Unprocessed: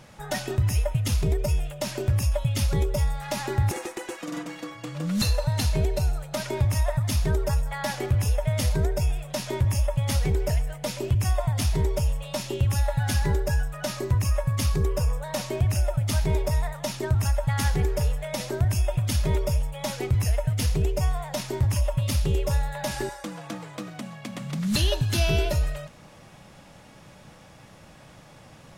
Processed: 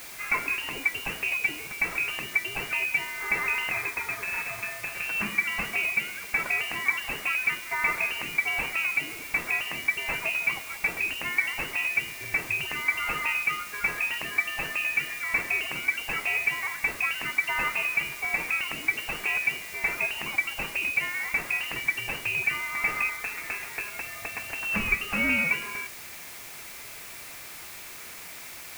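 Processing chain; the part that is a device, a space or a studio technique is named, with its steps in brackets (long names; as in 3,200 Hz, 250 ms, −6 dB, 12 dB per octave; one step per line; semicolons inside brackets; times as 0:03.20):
scrambled radio voice (band-pass filter 350–3,100 Hz; voice inversion scrambler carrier 2,900 Hz; white noise bed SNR 13 dB)
level +5 dB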